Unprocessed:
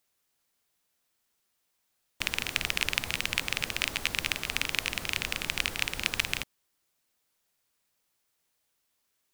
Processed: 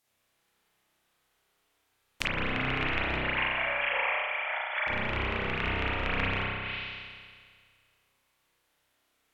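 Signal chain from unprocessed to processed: 3.19–4.87 s: formants replaced by sine waves; spring tank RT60 1.9 s, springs 31 ms, chirp 30 ms, DRR -8.5 dB; low-pass that closes with the level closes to 1.5 kHz, closed at -24.5 dBFS

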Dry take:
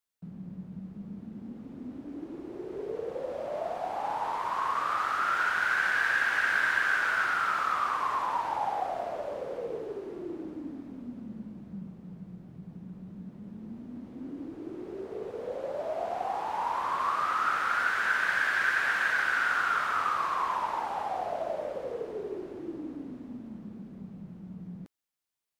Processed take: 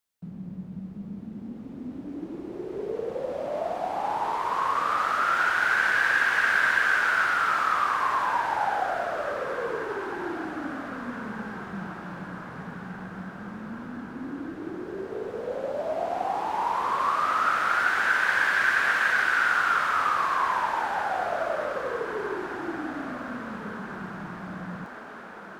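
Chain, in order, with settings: echo that smears into a reverb 1646 ms, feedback 62%, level -13 dB; trim +4 dB

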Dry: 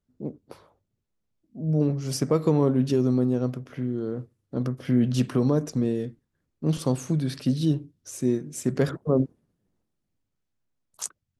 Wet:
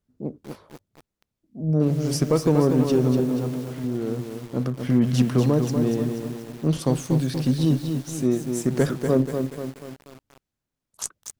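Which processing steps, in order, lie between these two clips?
Chebyshev shaper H 6 -30 dB, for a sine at -9.5 dBFS; 3.20–3.84 s: feedback comb 140 Hz, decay 0.31 s, harmonics all, mix 50%; bit-crushed delay 241 ms, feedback 55%, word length 7-bit, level -6 dB; trim +2 dB

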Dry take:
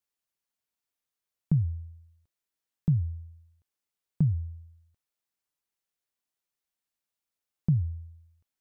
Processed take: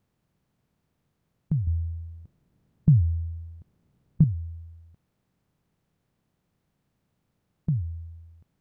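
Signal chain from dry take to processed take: spectral levelling over time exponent 0.6; 1.67–4.24 s: bass shelf 440 Hz +9 dB; trim -2.5 dB

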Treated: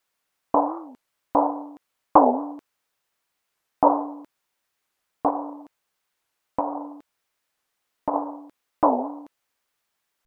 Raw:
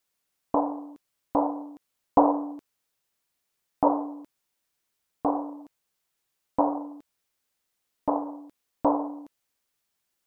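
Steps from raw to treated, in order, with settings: 5.28–8.14 s: compression 6:1, threshold -26 dBFS, peak gain reduction 9 dB; peaking EQ 1.2 kHz +7.5 dB 3 oct; warped record 45 rpm, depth 250 cents; trim -1 dB

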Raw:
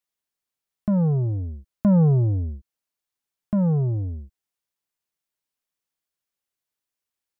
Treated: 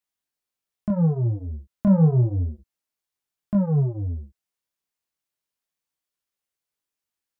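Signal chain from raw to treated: chorus 0.31 Hz, delay 19 ms, depth 7.4 ms; trim +2.5 dB

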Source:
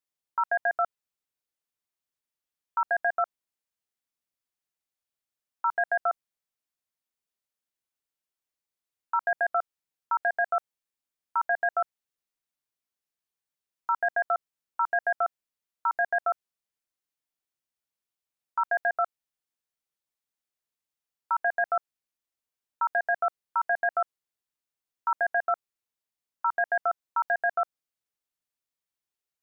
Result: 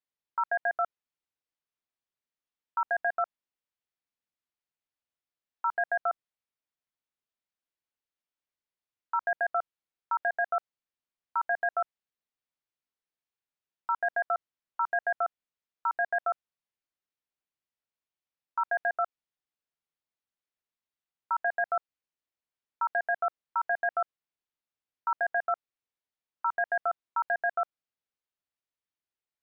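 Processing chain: low-pass 4.1 kHz 12 dB/octave; trim -2.5 dB

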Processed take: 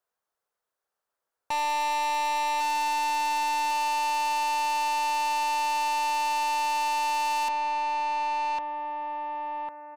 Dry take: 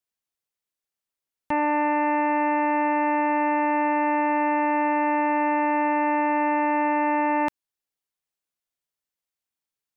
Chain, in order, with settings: high-order bell 810 Hz +13 dB 2.3 oct; on a send: feedback delay 1102 ms, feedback 31%, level -10 dB; on the sum: saturation -24.5 dBFS, distortion -4 dB; trim -1.5 dB

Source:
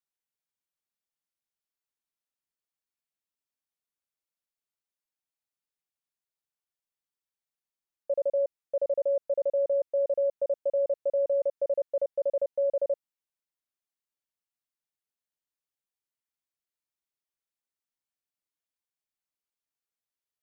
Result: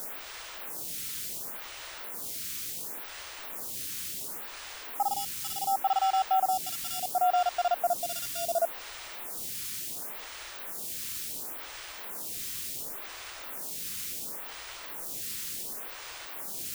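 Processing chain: gliding tape speed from 179% -> 65%; in parallel at -7.5 dB: sample-and-hold 21×; on the sum: tone controls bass +7 dB, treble +5 dB; word length cut 6-bit, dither triangular; lamp-driven phase shifter 0.7 Hz

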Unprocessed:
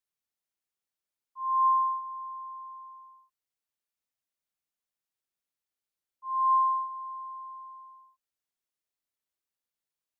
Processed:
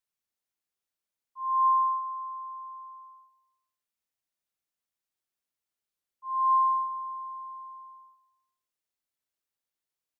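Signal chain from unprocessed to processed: on a send: feedback delay 139 ms, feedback 53%, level -20 dB

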